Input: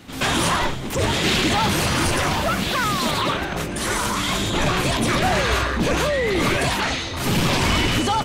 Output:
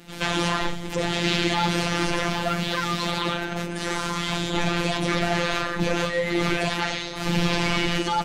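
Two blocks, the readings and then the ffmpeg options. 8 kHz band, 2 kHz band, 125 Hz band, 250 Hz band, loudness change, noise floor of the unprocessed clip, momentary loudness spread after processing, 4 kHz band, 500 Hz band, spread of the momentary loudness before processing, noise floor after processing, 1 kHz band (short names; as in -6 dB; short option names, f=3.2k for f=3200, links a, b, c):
-8.5 dB, -3.5 dB, -4.5 dB, -3.0 dB, -4.0 dB, -28 dBFS, 5 LU, -4.0 dB, -3.5 dB, 4 LU, -32 dBFS, -4.5 dB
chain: -filter_complex "[0:a]bandreject=f=1.1k:w=8.5,acrossover=split=6500[a][b];[b]acompressor=threshold=-46dB:ratio=4:attack=1:release=60[c];[a][c]amix=inputs=2:normalize=0,afftfilt=real='hypot(re,im)*cos(PI*b)':imag='0':win_size=1024:overlap=0.75"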